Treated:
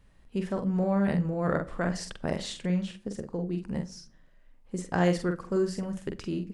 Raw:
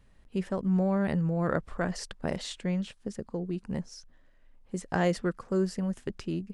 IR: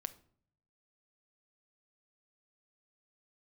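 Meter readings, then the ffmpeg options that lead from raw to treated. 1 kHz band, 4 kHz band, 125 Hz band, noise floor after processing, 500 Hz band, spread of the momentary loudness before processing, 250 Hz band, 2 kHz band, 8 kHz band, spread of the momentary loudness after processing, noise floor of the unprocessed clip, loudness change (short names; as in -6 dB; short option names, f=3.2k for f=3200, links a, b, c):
+1.0 dB, +1.0 dB, +0.5 dB, -58 dBFS, +1.5 dB, 10 LU, +1.0 dB, +1.0 dB, +1.0 dB, 11 LU, -59 dBFS, +1.0 dB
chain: -filter_complex "[0:a]asplit=2[a][b];[1:a]atrim=start_sample=2205,adelay=45[c];[b][c]afir=irnorm=-1:irlink=0,volume=-3dB[d];[a][d]amix=inputs=2:normalize=0"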